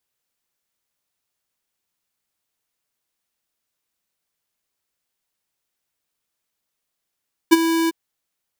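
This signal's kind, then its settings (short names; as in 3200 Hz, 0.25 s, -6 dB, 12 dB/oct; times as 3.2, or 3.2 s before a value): ADSR square 329 Hz, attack 19 ms, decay 27 ms, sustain -11.5 dB, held 0.38 s, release 22 ms -7.5 dBFS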